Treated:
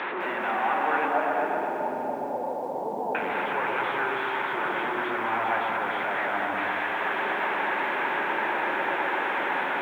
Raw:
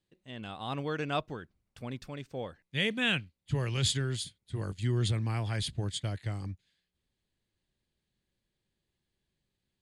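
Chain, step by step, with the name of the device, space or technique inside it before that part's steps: digital answering machine (BPF 360–3400 Hz; delta modulation 16 kbps, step -30.5 dBFS; speaker cabinet 420–4200 Hz, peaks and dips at 460 Hz -4 dB, 900 Hz +8 dB, 1500 Hz +5 dB, 3000 Hz -8 dB); 1.08–3.15 Chebyshev low-pass 880 Hz, order 5; high shelf 7000 Hz -6 dB; repeats that get brighter 0.124 s, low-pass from 750 Hz, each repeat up 1 oct, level 0 dB; lo-fi delay 0.205 s, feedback 55%, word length 10-bit, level -8.5 dB; gain +6.5 dB

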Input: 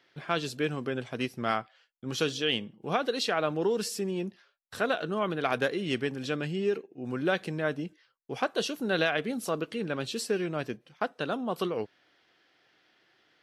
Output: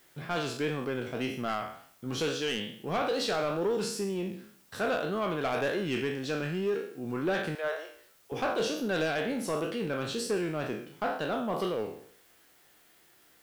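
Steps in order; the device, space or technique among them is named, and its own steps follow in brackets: spectral trails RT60 0.58 s; 7.55–8.32 steep high-pass 470 Hz 36 dB/oct; compact cassette (soft clip -22.5 dBFS, distortion -13 dB; LPF 11000 Hz; wow and flutter; white noise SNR 30 dB); bell 4200 Hz -3 dB 2.9 oct

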